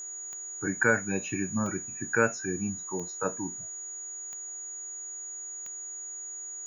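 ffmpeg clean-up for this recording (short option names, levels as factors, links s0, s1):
-af "adeclick=t=4,bandreject=f=378.9:t=h:w=4,bandreject=f=757.8:t=h:w=4,bandreject=f=1136.7:t=h:w=4,bandreject=f=1515.6:t=h:w=4,bandreject=f=1894.5:t=h:w=4,bandreject=f=6800:w=30"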